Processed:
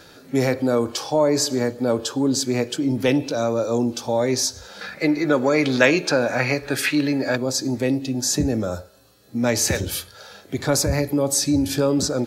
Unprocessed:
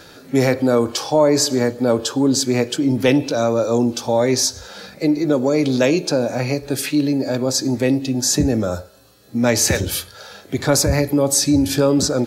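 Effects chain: 4.81–7.36 bell 1700 Hz +13.5 dB 1.8 oct; gain -4 dB

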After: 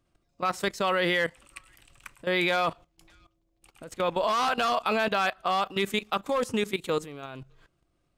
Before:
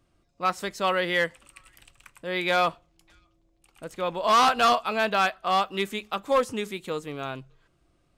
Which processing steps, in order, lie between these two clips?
level quantiser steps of 16 dB; gain +7 dB

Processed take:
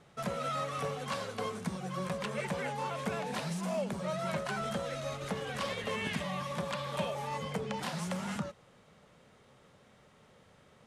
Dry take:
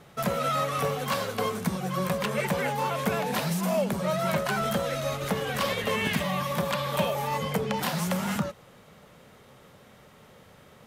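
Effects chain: LPF 10000 Hz 24 dB/oct; gain -8 dB

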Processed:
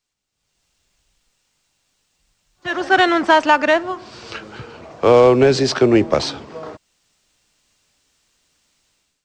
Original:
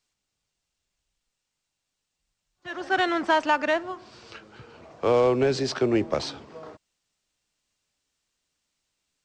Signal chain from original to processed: AGC gain up to 15.5 dB; gain -1 dB

